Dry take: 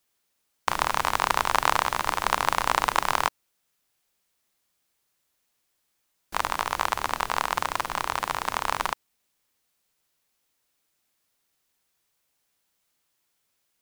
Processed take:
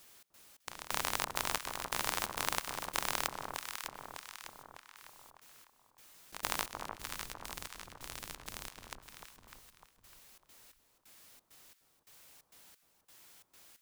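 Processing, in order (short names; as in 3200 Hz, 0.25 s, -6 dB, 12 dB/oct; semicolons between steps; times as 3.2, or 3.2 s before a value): 6.89–8.91 passive tone stack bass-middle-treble 10-0-1; compressor, threshold -25 dBFS, peak gain reduction 10.5 dB; step gate "xx.xx...x" 133 bpm -24 dB; echo with dull and thin repeats by turns 0.301 s, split 1200 Hz, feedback 51%, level -7 dB; spectral compressor 2:1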